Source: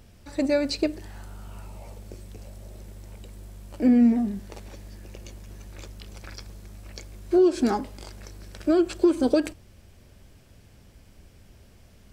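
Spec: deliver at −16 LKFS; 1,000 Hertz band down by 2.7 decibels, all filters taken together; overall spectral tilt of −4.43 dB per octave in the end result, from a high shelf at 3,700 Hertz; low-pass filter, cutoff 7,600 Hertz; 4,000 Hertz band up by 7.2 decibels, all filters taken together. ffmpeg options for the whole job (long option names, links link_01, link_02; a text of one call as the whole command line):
ffmpeg -i in.wav -af "lowpass=7600,equalizer=frequency=1000:width_type=o:gain=-4.5,highshelf=frequency=3700:gain=6.5,equalizer=frequency=4000:width_type=o:gain=4.5,volume=7.5dB" out.wav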